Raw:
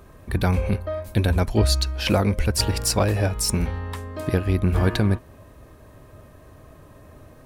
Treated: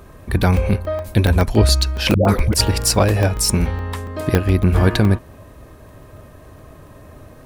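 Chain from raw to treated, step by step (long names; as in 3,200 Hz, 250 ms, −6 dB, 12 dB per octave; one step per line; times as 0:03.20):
0:02.14–0:02.54: all-pass dispersion highs, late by 144 ms, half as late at 590 Hz
regular buffer underruns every 0.14 s, samples 64, zero, from 0:00.43
level +5.5 dB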